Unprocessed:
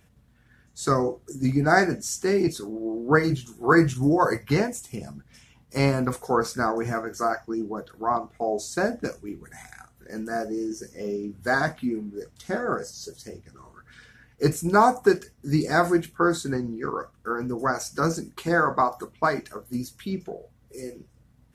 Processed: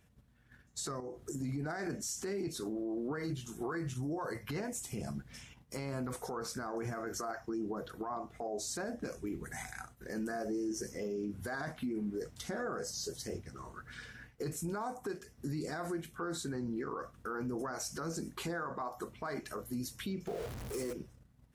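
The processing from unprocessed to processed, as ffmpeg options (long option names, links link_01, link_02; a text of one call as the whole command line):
ffmpeg -i in.wav -filter_complex "[0:a]asettb=1/sr,asplit=3[link_01][link_02][link_03];[link_01]atrim=end=1.004[link_04];[link_02]atrim=start=1:end=1.87,asetpts=PTS-STARTPTS,afade=type=in:duration=0.004:curve=qsin,afade=type=out:start_time=0.866:duration=0.004:curve=qsin,acompressor=threshold=-40dB:ratio=2:attack=3.2:release=140:knee=1:detection=peak[link_05];[link_03]atrim=start=1.866[link_06];[link_04][link_05]acrossfade=duration=0.004:curve1=hsin:curve2=qsin[link_07];[link_07][link_06]acrossfade=duration=0.004:curve1=qsin:curve2=hsin,asettb=1/sr,asplit=3[link_08][link_09][link_10];[link_08]atrim=end=20.274[link_11];[link_09]atrim=start=20.27:end=20.93,asetpts=PTS-STARTPTS,afade=type=in:duration=0.004:curve=qsin,afade=type=out:start_time=0.656:duration=0.004:curve=qsin,aeval=exprs='val(0)+0.5*0.01*sgn(val(0))':channel_layout=same[link_12];[link_10]atrim=start=20.926[link_13];[link_11][link_12]acrossfade=duration=0.004:curve1=hsin:curve2=qsin[link_14];[link_14][link_13]acrossfade=duration=0.004:curve1=qsin:curve2=hsin,agate=range=-9dB:threshold=-55dB:ratio=16:detection=peak,acompressor=threshold=-31dB:ratio=8,alimiter=level_in=7.5dB:limit=-24dB:level=0:latency=1:release=40,volume=-7.5dB,volume=1.5dB" out.wav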